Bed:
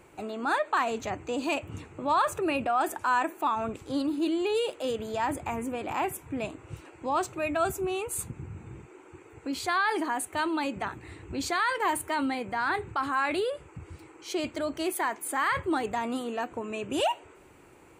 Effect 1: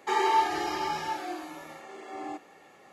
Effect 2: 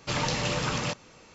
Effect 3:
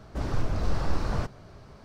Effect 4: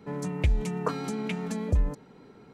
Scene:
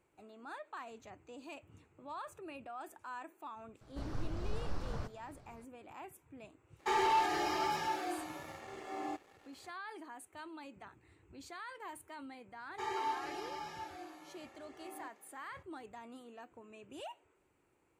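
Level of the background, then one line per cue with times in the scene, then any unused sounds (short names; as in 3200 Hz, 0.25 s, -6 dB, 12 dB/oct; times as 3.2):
bed -20 dB
3.81 add 3 -12 dB
6.79 add 1 -10.5 dB + sample leveller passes 2
12.71 add 1 -13 dB
not used: 2, 4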